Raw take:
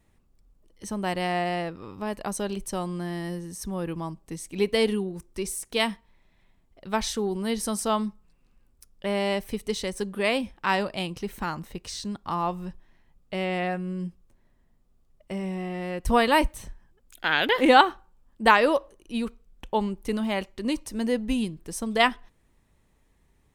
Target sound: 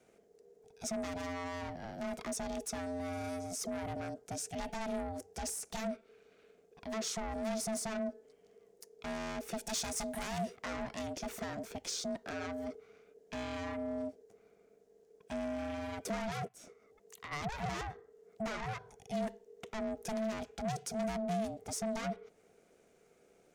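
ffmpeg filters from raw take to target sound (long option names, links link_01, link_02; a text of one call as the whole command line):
ffmpeg -i in.wav -filter_complex "[0:a]acrossover=split=110|690[link_01][link_02][link_03];[link_01]acompressor=threshold=-47dB:ratio=4[link_04];[link_02]acompressor=threshold=-25dB:ratio=4[link_05];[link_03]acompressor=threshold=-35dB:ratio=4[link_06];[link_04][link_05][link_06]amix=inputs=3:normalize=0,asettb=1/sr,asplit=3[link_07][link_08][link_09];[link_07]atrim=end=9.674[link_10];[link_08]atrim=start=9.67:end=10.56,asetpts=PTS-STARTPTS,afade=type=in:duration=0.004:curve=qsin,afade=type=out:start_time=0.886:duration=0.004:curve=qsin,highshelf=frequency=3600:gain=11.5[link_11];[link_09]atrim=start=10.556[link_12];[link_10][link_11]acrossfade=duration=0.004:curve1=hsin:curve2=qsin[link_13];[link_13][link_12]acrossfade=duration=0.004:curve1=qsin:curve2=hsin,asplit=3[link_14][link_15][link_16];[link_14]afade=type=out:start_time=16.47:duration=0.02[link_17];[link_15]acompressor=threshold=-54dB:ratio=2,afade=type=in:start_time=16.47:duration=0.02,afade=type=out:start_time=17.31:duration=0.02[link_18];[link_16]afade=type=in:start_time=17.31:duration=0.02[link_19];[link_17][link_18][link_19]amix=inputs=3:normalize=0,aeval=exprs='(tanh(56.2*val(0)+0.15)-tanh(0.15))/56.2':channel_layout=same,equalizer=frequency=250:width_type=o:width=0.67:gain=7,equalizer=frequency=630:width_type=o:width=0.67:gain=-9,equalizer=frequency=1600:width_type=o:width=0.67:gain=7,equalizer=frequency=6300:width_type=o:width=0.67:gain=9,aeval=exprs='val(0)*sin(2*PI*440*n/s)':channel_layout=same" out.wav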